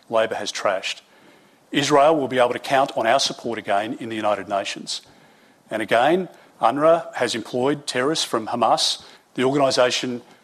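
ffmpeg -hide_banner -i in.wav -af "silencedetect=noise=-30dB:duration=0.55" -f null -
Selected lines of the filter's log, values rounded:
silence_start: 0.98
silence_end: 1.73 | silence_duration: 0.75
silence_start: 4.98
silence_end: 5.72 | silence_duration: 0.73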